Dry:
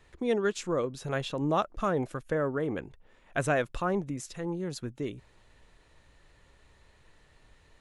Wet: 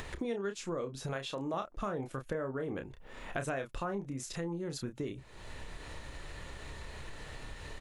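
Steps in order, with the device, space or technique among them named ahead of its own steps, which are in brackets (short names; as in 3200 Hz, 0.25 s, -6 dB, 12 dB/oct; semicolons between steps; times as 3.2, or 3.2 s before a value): 1.13–1.54 low shelf 280 Hz -11 dB; doubler 30 ms -7 dB; upward and downward compression (upward compressor, threshold -41 dBFS; compressor 4:1, threshold -43 dBFS, peak gain reduction 18 dB); gain +6.5 dB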